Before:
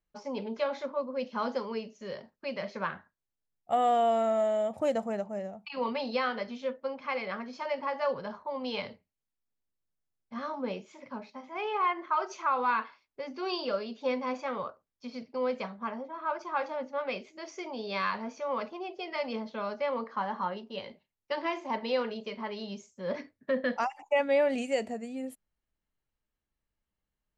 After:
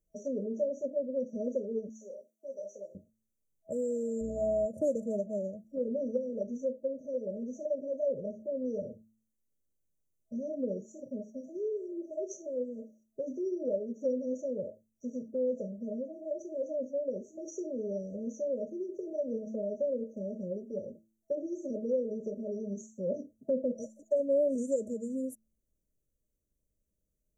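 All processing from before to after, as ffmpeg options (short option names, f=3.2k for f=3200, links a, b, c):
-filter_complex "[0:a]asettb=1/sr,asplit=3[a][b][c];[a]atrim=end=1.894[d];[b]atrim=start=1.89:end=2.95,asetpts=PTS-STARTPTS,afade=t=in:d=0.004:c=qsin,afade=t=out:st=1.056:d=0.004:c=qsin,highpass=980,asplit=2[e][f];[f]adelay=15,volume=-4dB[g];[e][g]amix=inputs=2:normalize=0,atrim=end_sample=46746[h];[c]atrim=start=2.946[i];[d][h]acrossfade=d=0.004:c1=hsin:c2=qsin[j];[j][i]acrossfade=d=0.004:c1=qsin:c2=hsin,asettb=1/sr,asplit=3[k][l][m];[k]atrim=end=4.214[n];[l]atrim=start=4.21:end=4.66,asetpts=PTS-STARTPTS,afade=t=in:d=0.004:c=qsin,afade=t=out:st=0.446:d=0.004:c=qsin,highshelf=f=6.3k:g=-9.5,aeval=exprs='val(0)+0.00447*(sin(2*PI*60*n/s)+sin(2*PI*2*60*n/s)/2+sin(2*PI*3*60*n/s)/3+sin(2*PI*4*60*n/s)/4+sin(2*PI*5*60*n/s)/5)':c=same[o];[m]atrim=start=4.656[p];[n][o]acrossfade=d=0.004:c1=hsin:c2=qsin[q];[q][p]acrossfade=d=0.004:c1=qsin:c2=hsin,bandreject=f=110.4:t=h:w=4,bandreject=f=220.8:t=h:w=4,bandreject=f=331.2:t=h:w=4,afftfilt=real='re*(1-between(b*sr/4096,650,5700))':imag='im*(1-between(b*sr/4096,650,5700))':win_size=4096:overlap=0.75,acompressor=threshold=-41dB:ratio=1.5,volume=5dB"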